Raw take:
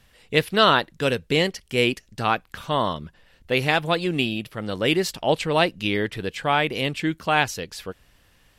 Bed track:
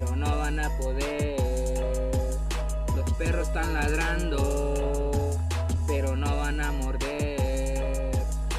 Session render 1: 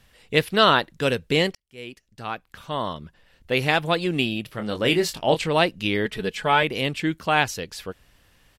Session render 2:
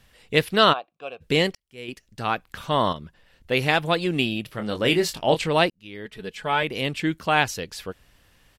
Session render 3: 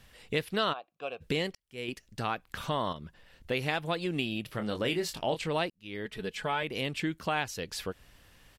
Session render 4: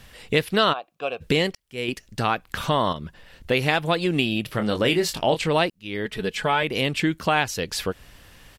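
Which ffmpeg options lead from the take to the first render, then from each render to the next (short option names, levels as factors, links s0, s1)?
-filter_complex "[0:a]asplit=3[s0][s1][s2];[s0]afade=t=out:st=4.48:d=0.02[s3];[s1]asplit=2[s4][s5];[s5]adelay=24,volume=0.422[s6];[s4][s6]amix=inputs=2:normalize=0,afade=t=in:st=4.48:d=0.02,afade=t=out:st=5.48:d=0.02[s7];[s2]afade=t=in:st=5.48:d=0.02[s8];[s3][s7][s8]amix=inputs=3:normalize=0,asettb=1/sr,asplit=3[s9][s10][s11];[s9]atrim=end=6.054[s12];[s10]atrim=start=6.05:end=6.63,asetpts=PTS-STARTPTS,afade=t=in:d=0.004:c=qsin,afade=t=out:st=0.576:d=0.004:c=qsin,aecho=1:1:4.7:0.65,atrim=end_sample=25578[s13];[s11]atrim=start=6.626[s14];[s12][s13]acrossfade=d=0.004:c1=hsin:c2=qsin[s15];[s15][s14]acrossfade=d=0.004:c1=qsin:c2=hsin,asplit=2[s16][s17];[s16]atrim=end=1.55,asetpts=PTS-STARTPTS,afade=t=out:st=1.546:d=0.004:c=hsin[s18];[s17]atrim=start=1.55,asetpts=PTS-STARTPTS,afade=t=in:d=2.15[s19];[s18][s19]concat=n=2:v=0:a=1"
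-filter_complex "[0:a]asplit=3[s0][s1][s2];[s0]afade=t=out:st=0.72:d=0.02[s3];[s1]asplit=3[s4][s5][s6];[s4]bandpass=f=730:t=q:w=8,volume=1[s7];[s5]bandpass=f=1090:t=q:w=8,volume=0.501[s8];[s6]bandpass=f=2440:t=q:w=8,volume=0.355[s9];[s7][s8][s9]amix=inputs=3:normalize=0,afade=t=in:st=0.72:d=0.02,afade=t=out:st=1.2:d=0.02[s10];[s2]afade=t=in:st=1.2:d=0.02[s11];[s3][s10][s11]amix=inputs=3:normalize=0,asettb=1/sr,asplit=3[s12][s13][s14];[s12]atrim=end=1.884[s15];[s13]atrim=start=1.88:end=2.93,asetpts=PTS-STARTPTS,afade=t=in:d=0.004:c=qsin,afade=t=out:st=1.046:d=0.004:c=qsin,acontrast=53[s16];[s14]atrim=start=2.926[s17];[s15][s16]acrossfade=d=0.004:c1=hsin:c2=qsin[s18];[s18][s17]acrossfade=d=0.004:c1=qsin:c2=hsin,asplit=2[s19][s20];[s19]atrim=end=5.7,asetpts=PTS-STARTPTS,afade=t=out:st=5.696:d=0.004:c=hsin[s21];[s20]atrim=start=5.7,asetpts=PTS-STARTPTS,afade=t=in:d=1.33[s22];[s21][s22]concat=n=2:v=0:a=1"
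-af "acompressor=threshold=0.0251:ratio=2.5"
-af "volume=2.99"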